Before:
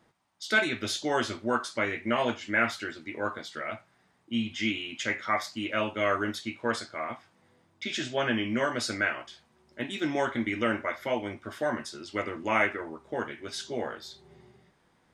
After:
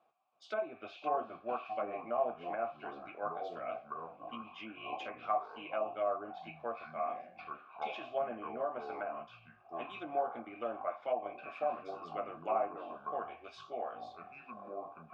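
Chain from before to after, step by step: low-pass that closes with the level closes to 900 Hz, closed at -24 dBFS; ever faster or slower copies 324 ms, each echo -6 st, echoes 3, each echo -6 dB; vowel filter a; trim +4 dB

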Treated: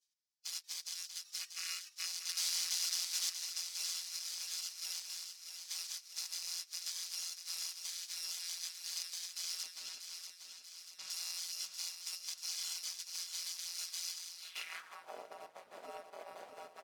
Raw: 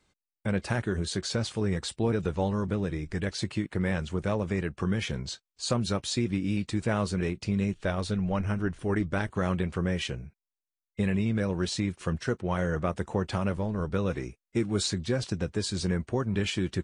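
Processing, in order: bit-reversed sample order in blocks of 256 samples; spectral gate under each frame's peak -25 dB weak; 9.63–11.10 s: RIAA curve playback; in parallel at 0 dB: peak limiter -30 dBFS, peak gain reduction 7.5 dB; 1.41–2.06 s: on the sum: time-frequency box 1.1–3 kHz +10 dB; 2.29–3.41 s: companded quantiser 2-bit; feedback delay 638 ms, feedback 58%, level -7.5 dB; band-pass sweep 5.2 kHz -> 620 Hz, 14.35–15.14 s; trim +3 dB

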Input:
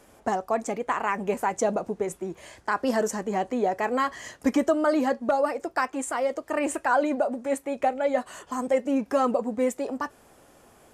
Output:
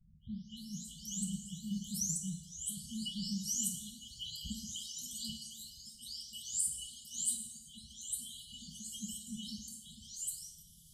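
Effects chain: delay that grows with frequency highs late, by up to 566 ms; reverb removal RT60 0.83 s; brick-wall FIR band-stop 210–2900 Hz; FDN reverb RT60 1 s, low-frequency decay 0.75×, high-frequency decay 0.9×, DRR 2 dB; trim +3 dB

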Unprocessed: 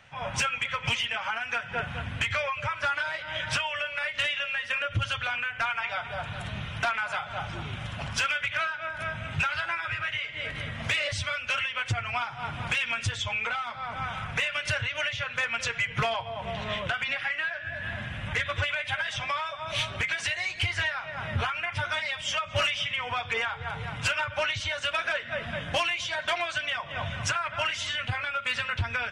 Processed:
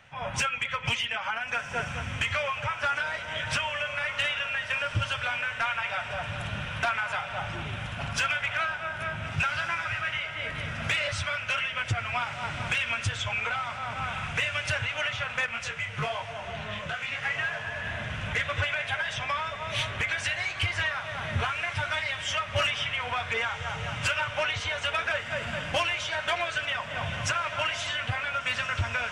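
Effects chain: peaking EQ 4.4 kHz -2.5 dB; echo that smears into a reverb 1483 ms, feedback 64%, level -10.5 dB; 15.46–17.23 s: detune thickener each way 40 cents

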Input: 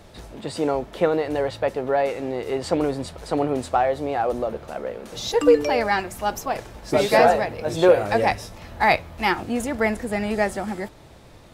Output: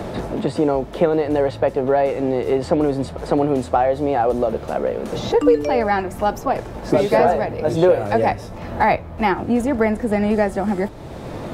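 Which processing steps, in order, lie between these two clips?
tilt shelf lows +5.5 dB, about 1.4 kHz; three bands compressed up and down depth 70%

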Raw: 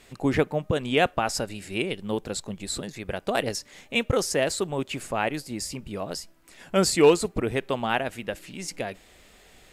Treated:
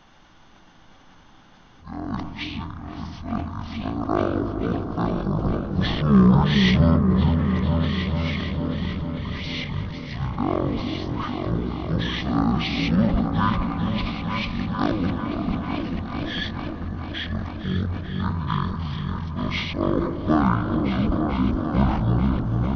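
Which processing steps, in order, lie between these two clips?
reverse the whole clip; spectral selection erased 5.88–6.32 s, 1.1–3.8 kHz; on a send: delay with an opening low-pass 190 ms, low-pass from 750 Hz, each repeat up 2 oct, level -3 dB; on the sum: spring tank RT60 2.2 s, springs 41/46/51 ms, chirp 65 ms, DRR 7 dB; speed mistake 78 rpm record played at 33 rpm; decay stretcher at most 53 dB/s

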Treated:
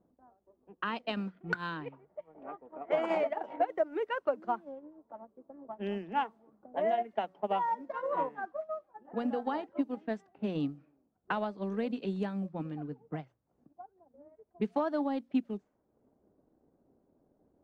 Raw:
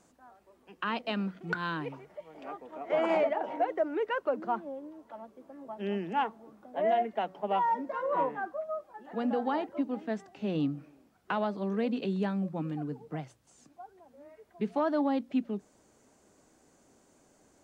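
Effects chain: transient shaper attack +5 dB, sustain -7 dB; level-controlled noise filter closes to 570 Hz, open at -26.5 dBFS; trim -4 dB

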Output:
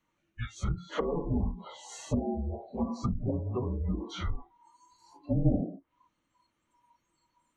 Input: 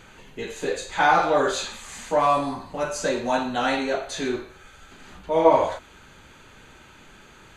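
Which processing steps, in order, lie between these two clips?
low-pass that closes with the level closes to 440 Hz, closed at -20 dBFS; frequency shift -350 Hz; spectral noise reduction 27 dB; trim -3 dB

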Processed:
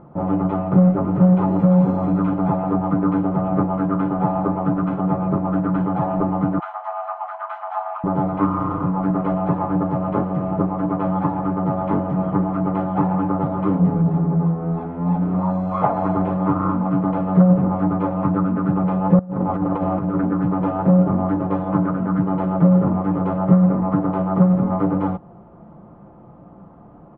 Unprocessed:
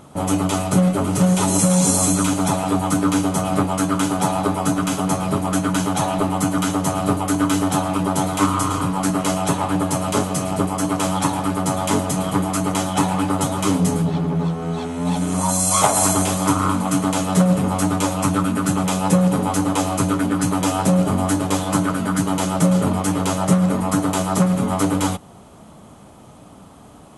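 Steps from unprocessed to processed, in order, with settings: 6.59–8.04 s: steep high-pass 650 Hz 96 dB/octave; comb 5.8 ms, depth 43%; 19.19–20.25 s: compressor with a negative ratio -20 dBFS, ratio -0.5; Bessel low-pass 1 kHz, order 4

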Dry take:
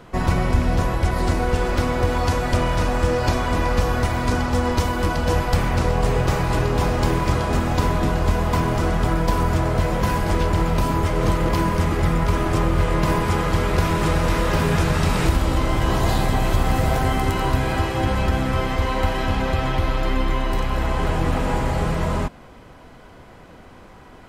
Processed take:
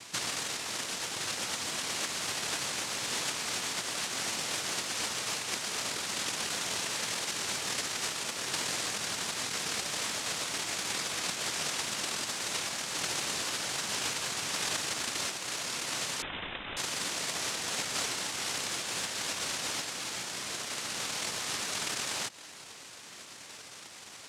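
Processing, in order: compression 12:1, threshold -26 dBFS, peak gain reduction 15 dB; noise-vocoded speech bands 1; 16.22–16.77 s: frequency inversion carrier 3.8 kHz; trim -2.5 dB

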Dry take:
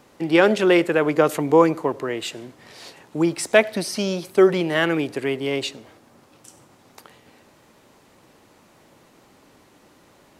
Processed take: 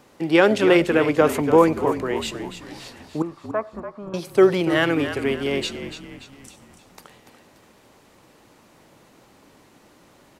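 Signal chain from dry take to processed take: 3.22–4.14 s: four-pole ladder low-pass 1.2 kHz, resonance 85%; frequency-shifting echo 289 ms, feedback 46%, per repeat -48 Hz, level -10 dB

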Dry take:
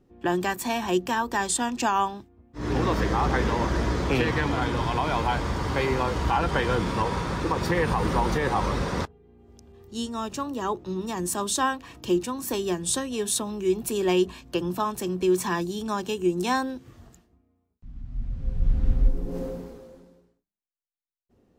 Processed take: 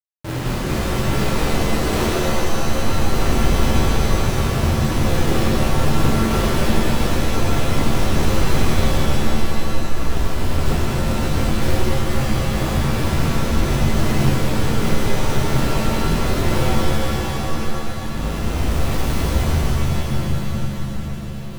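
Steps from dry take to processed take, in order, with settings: frequency-domain pitch shifter -10 st; frequency shift -75 Hz; dynamic bell 190 Hz, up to -7 dB, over -45 dBFS, Q 3.5; in parallel at -11.5 dB: saturation -21 dBFS, distortion -13 dB; on the sum: modulation noise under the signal 10 dB; inverse Chebyshev band-stop 780–5300 Hz, stop band 40 dB; Schmitt trigger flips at -26.5 dBFS; on a send: shuffle delay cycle 1303 ms, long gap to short 3:1, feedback 51%, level -14.5 dB; on the sum: pitch-shifted reverb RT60 3.1 s, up +7 st, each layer -2 dB, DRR -7 dB

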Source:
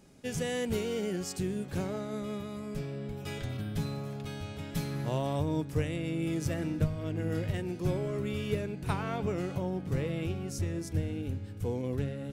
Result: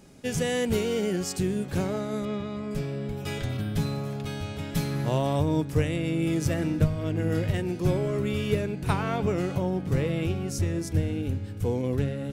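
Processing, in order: 2.25–2.71 s: low-pass 4.5 kHz 12 dB/octave; trim +6 dB

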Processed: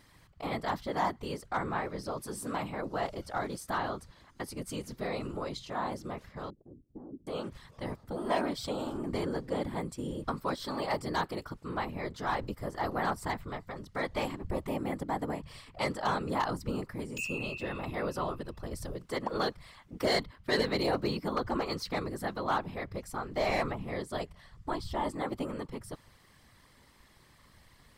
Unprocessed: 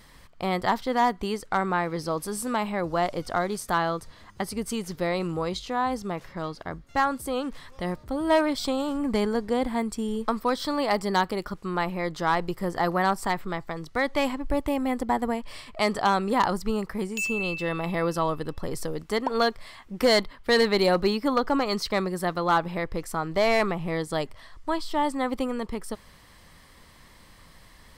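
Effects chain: whisper effect; 6.50–7.27 s: four-pole ladder low-pass 410 Hz, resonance 40%; trim -8 dB

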